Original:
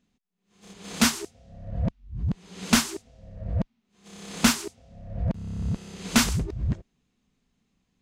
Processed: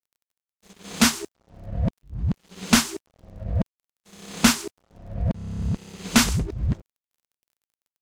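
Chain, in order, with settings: crackle 41 per s -48 dBFS; crossover distortion -49 dBFS; trim +3 dB

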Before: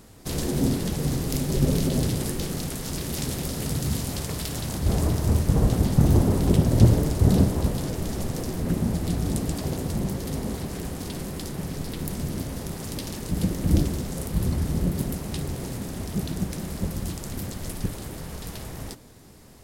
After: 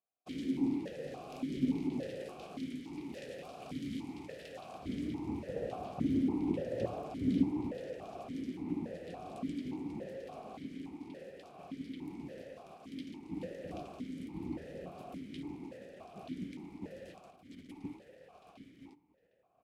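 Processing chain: expander -29 dBFS; 17.24–17.69 s: compressor with a negative ratio -40 dBFS, ratio -1; echo from a far wall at 130 m, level -14 dB; stepped vowel filter 3.5 Hz

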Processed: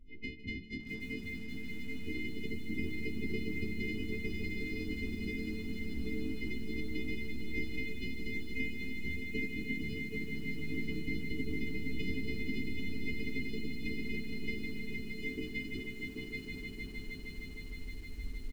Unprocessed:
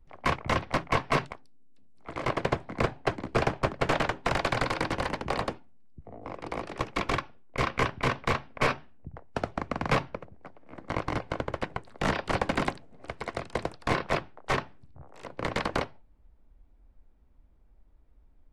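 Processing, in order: partials quantised in pitch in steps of 3 st; recorder AGC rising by 6 dB/s; treble shelf 3.2 kHz -7 dB; comb 3.8 ms, depth 62%; compression 8:1, threshold -33 dBFS, peak gain reduction 16 dB; brick-wall FIR band-stop 460–1900 Hz; tape spacing loss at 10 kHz 31 dB; echo with a slow build-up 155 ms, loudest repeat 5, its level -8.5 dB; bit-crushed delay 787 ms, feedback 35%, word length 10-bit, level -5 dB; trim +3.5 dB

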